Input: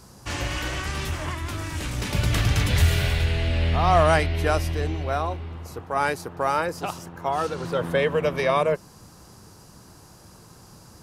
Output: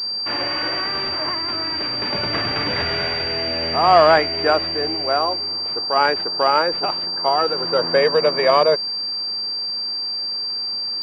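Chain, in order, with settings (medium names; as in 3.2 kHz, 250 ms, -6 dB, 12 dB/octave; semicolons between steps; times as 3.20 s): high-pass 320 Hz 12 dB/octave; class-D stage that switches slowly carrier 4.7 kHz; trim +7 dB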